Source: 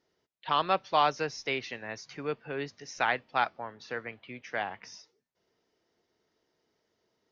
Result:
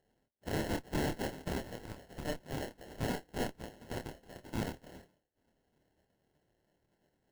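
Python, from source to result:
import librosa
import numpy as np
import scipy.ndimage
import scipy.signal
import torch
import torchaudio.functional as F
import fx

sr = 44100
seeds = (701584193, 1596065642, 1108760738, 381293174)

y = fx.spec_gate(x, sr, threshold_db=-15, keep='weak')
y = fx.sample_hold(y, sr, seeds[0], rate_hz=1200.0, jitter_pct=0)
y = fx.tube_stage(y, sr, drive_db=42.0, bias=0.8)
y = fx.doubler(y, sr, ms=27.0, db=-6)
y = y * librosa.db_to_amplitude(12.0)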